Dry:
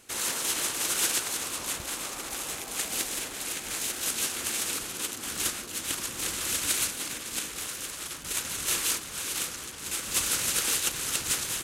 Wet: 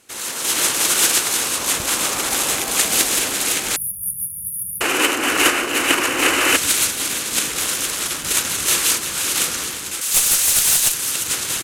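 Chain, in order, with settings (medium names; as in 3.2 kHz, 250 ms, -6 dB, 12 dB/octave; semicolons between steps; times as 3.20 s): 10.01–10.92 s: tilt EQ +3.5 dB/octave; in parallel at -10 dB: saturation -16.5 dBFS, distortion -10 dB; on the sum: bass shelf 90 Hz -6.5 dB; on a send: delay 349 ms -10.5 dB; on the sum: one-sided clip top -17 dBFS, bottom -4 dBFS; 4.29–6.56 s: time-frequency box 250–3100 Hz +12 dB; level rider gain up to 15 dB; 3.76–4.81 s: brick-wall FIR band-stop 190–9400 Hz; trim -1 dB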